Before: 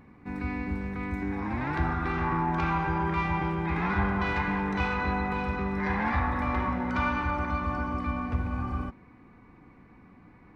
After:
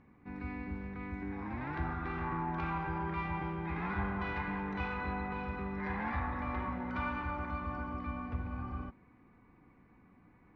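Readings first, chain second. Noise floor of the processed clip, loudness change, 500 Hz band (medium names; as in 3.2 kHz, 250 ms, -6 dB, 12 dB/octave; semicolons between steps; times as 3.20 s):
-63 dBFS, -8.5 dB, -8.5 dB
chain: low-pass 3.8 kHz 12 dB/octave; trim -8.5 dB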